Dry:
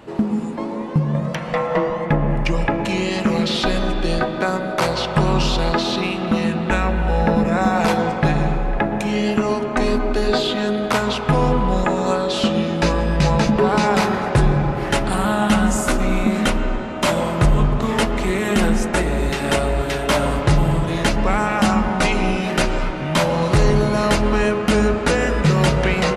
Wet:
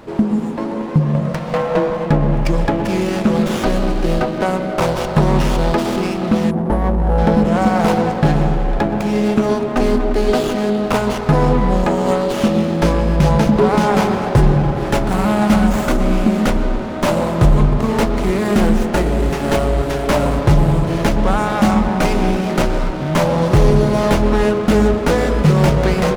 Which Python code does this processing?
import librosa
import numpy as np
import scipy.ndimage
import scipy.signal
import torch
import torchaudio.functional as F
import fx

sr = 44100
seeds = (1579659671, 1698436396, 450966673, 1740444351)

y = fx.dynamic_eq(x, sr, hz=1800.0, q=0.93, threshold_db=-35.0, ratio=4.0, max_db=-5)
y = fx.spec_erase(y, sr, start_s=6.51, length_s=0.67, low_hz=1200.0, high_hz=9300.0)
y = fx.running_max(y, sr, window=9)
y = y * 10.0 ** (4.0 / 20.0)